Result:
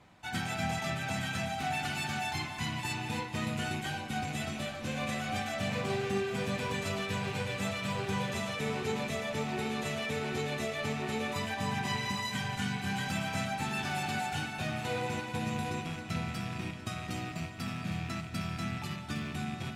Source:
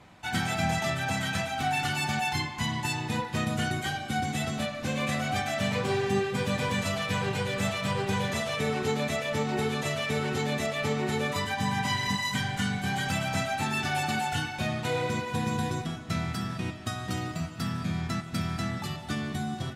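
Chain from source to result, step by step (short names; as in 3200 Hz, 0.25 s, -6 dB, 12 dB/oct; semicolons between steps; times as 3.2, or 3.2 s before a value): rattling part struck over -37 dBFS, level -29 dBFS; on a send: multi-head echo 0.27 s, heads first and third, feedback 45%, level -11 dB; on the sum: gain -6 dB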